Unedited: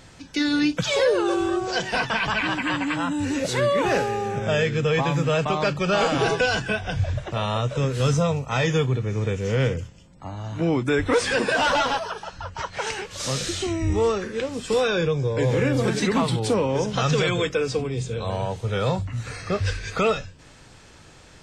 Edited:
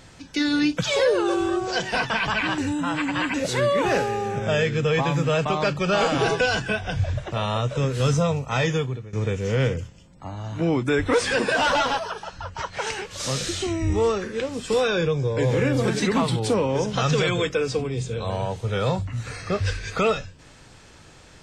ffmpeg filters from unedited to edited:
ffmpeg -i in.wav -filter_complex "[0:a]asplit=4[link_01][link_02][link_03][link_04];[link_01]atrim=end=2.582[link_05];[link_02]atrim=start=2.578:end=3.342,asetpts=PTS-STARTPTS,areverse[link_06];[link_03]atrim=start=3.338:end=9.13,asetpts=PTS-STARTPTS,afade=type=out:start_time=5.292:duration=0.5:silence=0.11885[link_07];[link_04]atrim=start=9.13,asetpts=PTS-STARTPTS,afade=type=in:duration=0.004:curve=hsin:silence=0.11885[link_08];[link_05][link_06]acrossfade=duration=0.004:curve1=hsin:curve2=hsin[link_09];[link_07][link_08]concat=n=2:v=0:a=1[link_10];[link_09][link_10]acrossfade=duration=0.004:curve1=hsin:curve2=hsin" out.wav

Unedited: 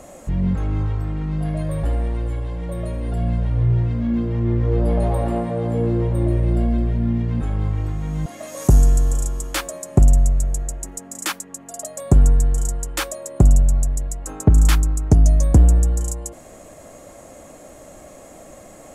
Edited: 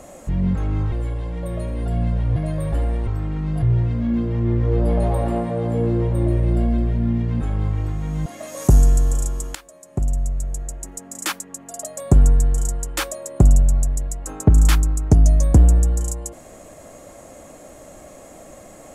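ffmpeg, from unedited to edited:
ffmpeg -i in.wav -filter_complex "[0:a]asplit=6[link_01][link_02][link_03][link_04][link_05][link_06];[link_01]atrim=end=0.922[link_07];[link_02]atrim=start=2.178:end=3.622[link_08];[link_03]atrim=start=1.468:end=2.182[link_09];[link_04]atrim=start=0.918:end=1.472[link_10];[link_05]atrim=start=3.618:end=9.55,asetpts=PTS-STARTPTS,afade=type=out:start_time=5.928:duration=0.004:curve=hsin:silence=0.1[link_11];[link_06]atrim=start=9.55,asetpts=PTS-STARTPTS,afade=type=in:duration=1.74:silence=0.1[link_12];[link_07][link_08]acrossfade=duration=0.004:curve1=hsin:curve2=hsin[link_13];[link_13][link_09]acrossfade=duration=0.004:curve1=hsin:curve2=hsin[link_14];[link_14][link_10]acrossfade=duration=0.004:curve1=hsin:curve2=hsin[link_15];[link_11][link_12]concat=n=2:v=0:a=1[link_16];[link_15][link_16]acrossfade=duration=0.004:curve1=hsin:curve2=hsin" out.wav

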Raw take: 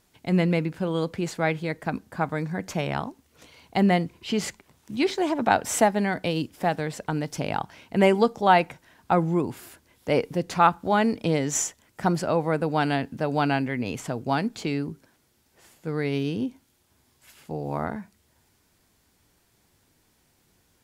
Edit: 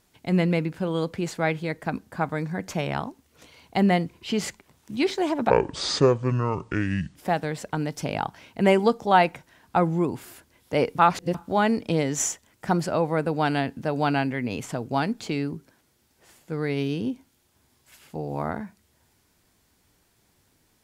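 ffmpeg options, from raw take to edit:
ffmpeg -i in.wav -filter_complex "[0:a]asplit=5[link_01][link_02][link_03][link_04][link_05];[link_01]atrim=end=5.504[link_06];[link_02]atrim=start=5.5:end=6.51,asetpts=PTS-STARTPTS,asetrate=26901,aresample=44100,atrim=end_sample=73018,asetpts=PTS-STARTPTS[link_07];[link_03]atrim=start=6.506:end=10.342[link_08];[link_04]atrim=start=10.338:end=10.702,asetpts=PTS-STARTPTS,areverse[link_09];[link_05]atrim=start=10.698[link_10];[link_06][link_07]acrossfade=duration=0.004:curve1=hsin:curve2=hsin[link_11];[link_11][link_08]acrossfade=duration=0.004:curve1=hsin:curve2=hsin[link_12];[link_12][link_09]acrossfade=duration=0.004:curve1=hsin:curve2=hsin[link_13];[link_13][link_10]acrossfade=duration=0.004:curve1=hsin:curve2=hsin" out.wav

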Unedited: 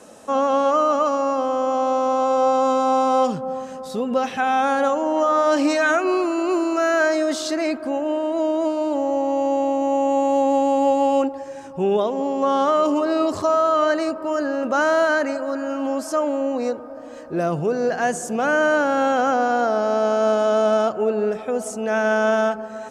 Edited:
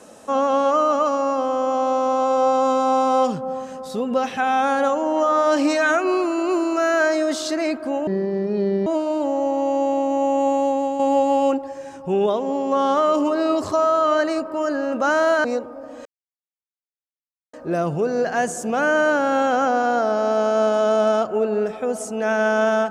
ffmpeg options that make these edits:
ffmpeg -i in.wav -filter_complex "[0:a]asplit=6[link_01][link_02][link_03][link_04][link_05][link_06];[link_01]atrim=end=8.074[link_07];[link_02]atrim=start=8.07:end=8.57,asetpts=PTS-STARTPTS,asetrate=27783,aresample=44100[link_08];[link_03]atrim=start=8.566:end=10.7,asetpts=PTS-STARTPTS,afade=type=out:start_time=1.654:duration=0.48:silence=0.446684[link_09];[link_04]atrim=start=10.7:end=15.152,asetpts=PTS-STARTPTS,afade=type=in:duration=0.004:curve=hsin:silence=0.446684[link_10];[link_05]atrim=start=16.578:end=17.19,asetpts=PTS-STARTPTS,afade=type=out:start_time=0.608:duration=0.004:curve=hsin,apad=pad_dur=1.48[link_11];[link_06]atrim=start=17.19,asetpts=PTS-STARTPTS,afade=type=in:duration=0.004:curve=hsin[link_12];[link_07][link_08]acrossfade=duration=0.004:curve1=hsin:curve2=hsin[link_13];[link_09][link_10]concat=n=2:v=0:a=1[link_14];[link_13][link_14]acrossfade=duration=0.004:curve1=hsin:curve2=hsin[link_15];[link_11][link_12]concat=n=2:v=0:a=1[link_16];[link_15][link_16]acrossfade=duration=0.004:curve1=hsin:curve2=hsin" out.wav

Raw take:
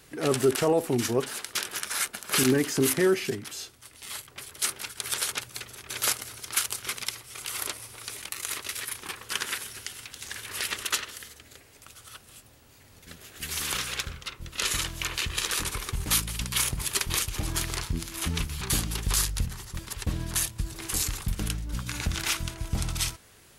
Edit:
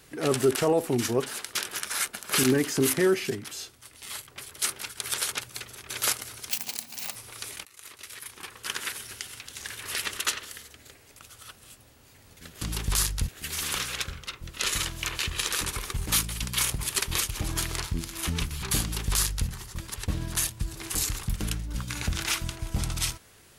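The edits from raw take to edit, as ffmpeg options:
ffmpeg -i in.wav -filter_complex "[0:a]asplit=6[link_01][link_02][link_03][link_04][link_05][link_06];[link_01]atrim=end=6.494[link_07];[link_02]atrim=start=6.49:end=7.81,asetpts=PTS-STARTPTS,asetrate=87759,aresample=44100,atrim=end_sample=29252,asetpts=PTS-STARTPTS[link_08];[link_03]atrim=start=7.806:end=8.31,asetpts=PTS-STARTPTS,afade=type=out:start_time=0.5:duration=0.004:curve=hsin:silence=0.0944061[link_09];[link_04]atrim=start=8.31:end=13.272,asetpts=PTS-STARTPTS,afade=type=in:duration=1.41:silence=0.0944061[link_10];[link_05]atrim=start=18.798:end=19.472[link_11];[link_06]atrim=start=13.268[link_12];[link_07][link_08]acrossfade=duration=0.004:curve1=hsin:curve2=hsin[link_13];[link_09][link_10]concat=n=2:v=0:a=1[link_14];[link_13][link_14]acrossfade=duration=0.004:curve1=hsin:curve2=hsin[link_15];[link_15][link_11]acrossfade=duration=0.004:curve1=hsin:curve2=hsin[link_16];[link_16][link_12]acrossfade=duration=0.004:curve1=hsin:curve2=hsin" out.wav

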